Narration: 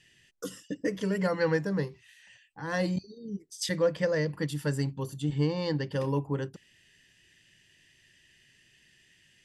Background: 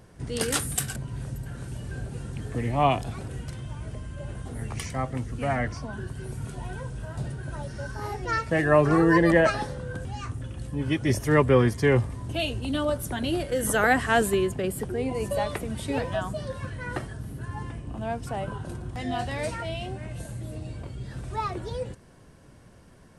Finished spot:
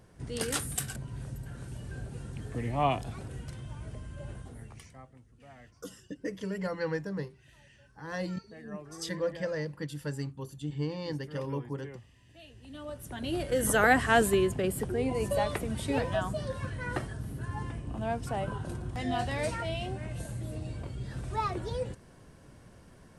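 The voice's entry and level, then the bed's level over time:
5.40 s, -6.0 dB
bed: 4.32 s -5.5 dB
5.22 s -26.5 dB
12.34 s -26.5 dB
13.52 s -1.5 dB

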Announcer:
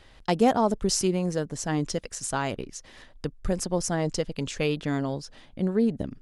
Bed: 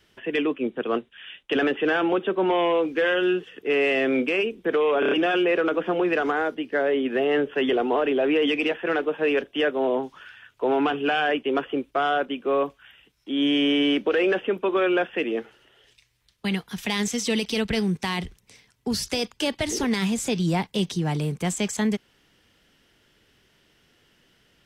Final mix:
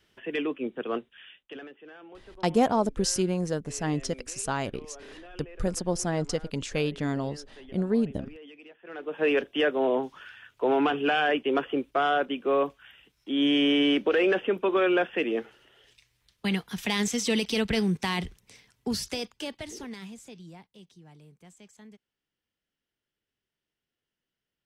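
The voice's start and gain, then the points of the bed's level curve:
2.15 s, -1.5 dB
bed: 1.19 s -5.5 dB
1.76 s -26 dB
8.76 s -26 dB
9.23 s -1.5 dB
18.77 s -1.5 dB
20.77 s -27 dB

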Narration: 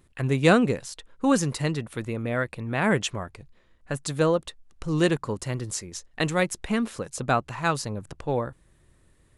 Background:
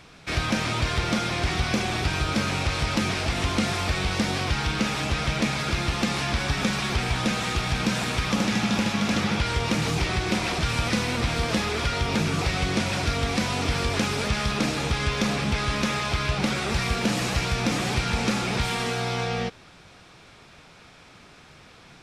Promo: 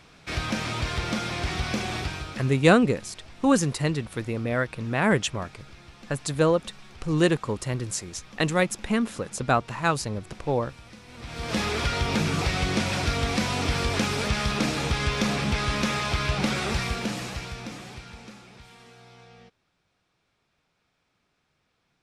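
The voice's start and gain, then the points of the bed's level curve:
2.20 s, +1.0 dB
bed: 1.98 s -3.5 dB
2.76 s -23 dB
11.04 s -23 dB
11.60 s -0.5 dB
16.67 s -0.5 dB
18.54 s -23.5 dB

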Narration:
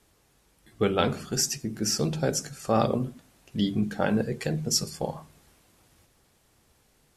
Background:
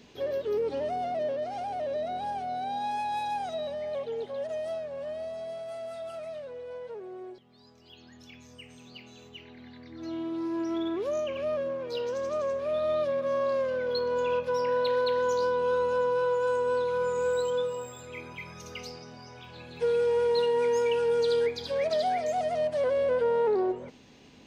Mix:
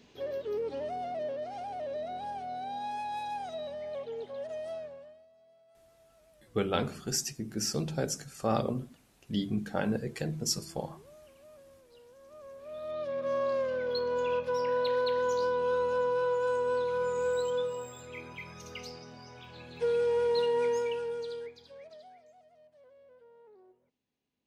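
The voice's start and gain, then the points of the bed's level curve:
5.75 s, -5.5 dB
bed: 4.85 s -5 dB
5.27 s -25 dB
12.15 s -25 dB
13.30 s -2.5 dB
20.66 s -2.5 dB
22.46 s -32.5 dB

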